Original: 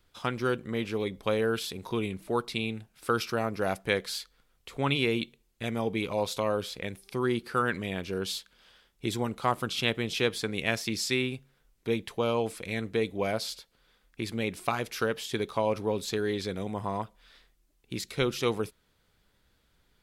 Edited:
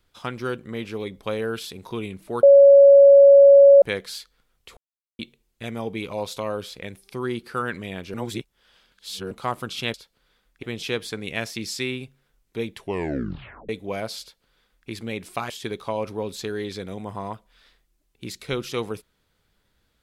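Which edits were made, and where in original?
2.43–3.82 bleep 559 Hz -7 dBFS
4.77–5.19 mute
8.14–9.31 reverse
12.08 tape stop 0.92 s
13.52–14.21 copy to 9.94
14.81–15.19 cut

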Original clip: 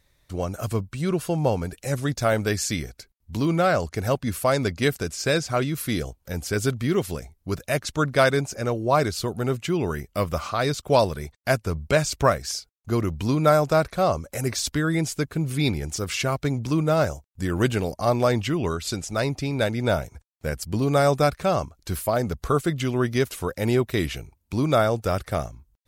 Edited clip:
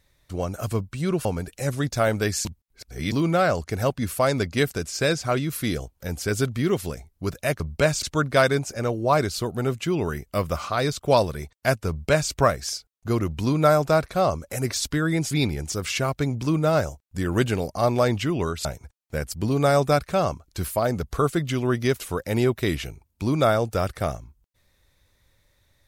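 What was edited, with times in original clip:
1.25–1.5 cut
2.7–3.37 reverse
11.71–12.14 copy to 7.85
15.13–15.55 cut
18.89–19.96 cut

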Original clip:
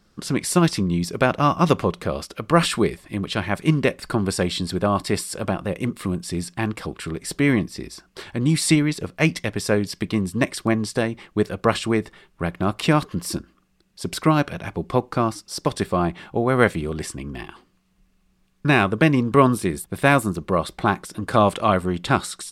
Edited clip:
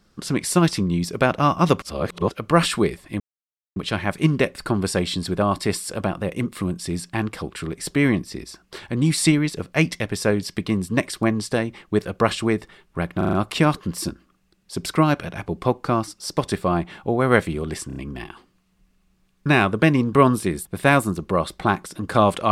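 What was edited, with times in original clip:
1.82–2.3 reverse
3.2 insert silence 0.56 s
12.61 stutter 0.04 s, 5 plays
17.15 stutter 0.03 s, 4 plays

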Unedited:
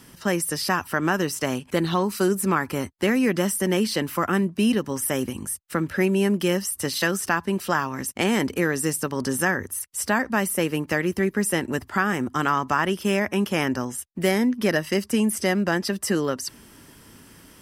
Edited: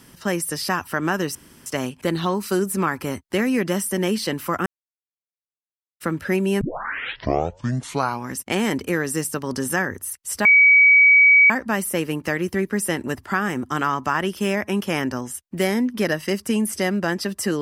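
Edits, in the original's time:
1.35 insert room tone 0.31 s
4.35–5.69 mute
6.3 tape start 1.74 s
10.14 add tone 2270 Hz -9 dBFS 1.05 s

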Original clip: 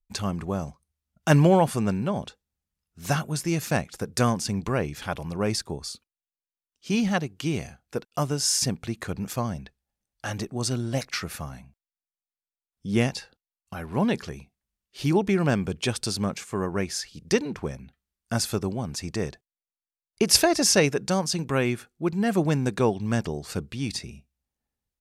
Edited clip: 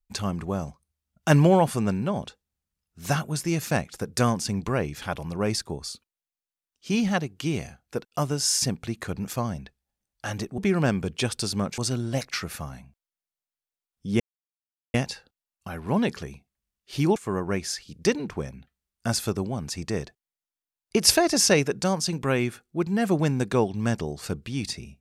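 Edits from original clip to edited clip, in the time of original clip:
13 insert silence 0.74 s
15.22–16.42 move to 10.58

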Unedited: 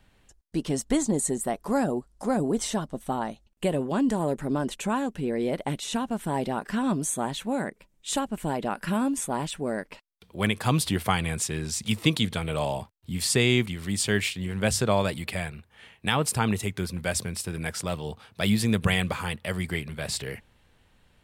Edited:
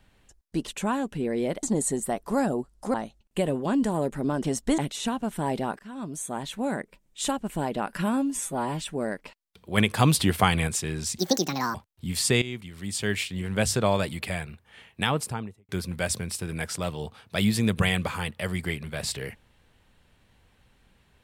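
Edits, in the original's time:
0.67–1.01 swap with 4.7–5.66
2.32–3.2 cut
6.67–7.58 fade in linear, from -20.5 dB
9.05–9.48 stretch 1.5×
10.44–11.34 gain +3.5 dB
11.85–12.8 speed 169%
13.47–14.45 fade in, from -16 dB
16.06–16.74 studio fade out

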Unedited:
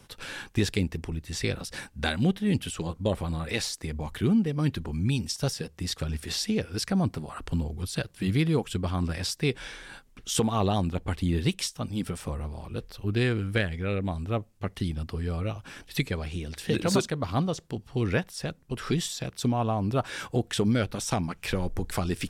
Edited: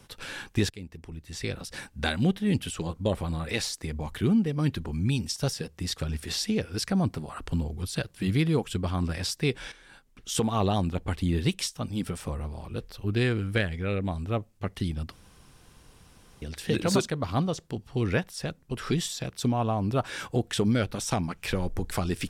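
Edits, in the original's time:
0.7–1.96 fade in, from -19 dB
9.72–10.57 fade in, from -12 dB
15.12–16.42 room tone

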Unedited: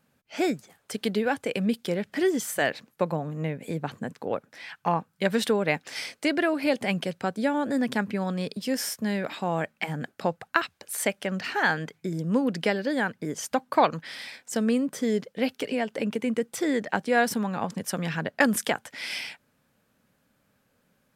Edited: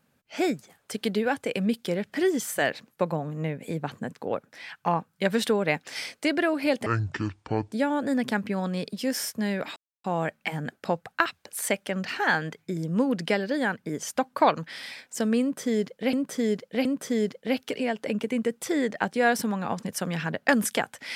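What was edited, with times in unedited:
6.86–7.36 speed 58%
9.4 insert silence 0.28 s
14.77–15.49 loop, 3 plays

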